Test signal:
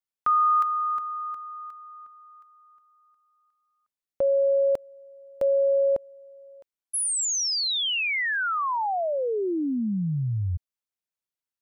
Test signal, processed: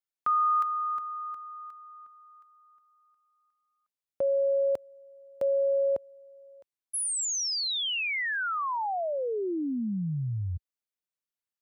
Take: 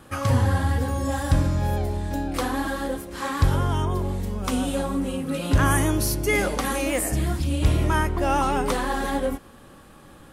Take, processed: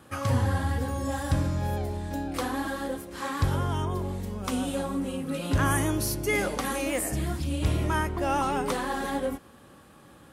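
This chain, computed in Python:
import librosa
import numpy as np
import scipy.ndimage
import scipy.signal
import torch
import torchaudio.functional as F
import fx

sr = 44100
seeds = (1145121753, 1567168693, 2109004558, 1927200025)

y = scipy.signal.sosfilt(scipy.signal.butter(2, 65.0, 'highpass', fs=sr, output='sos'), x)
y = y * 10.0 ** (-4.0 / 20.0)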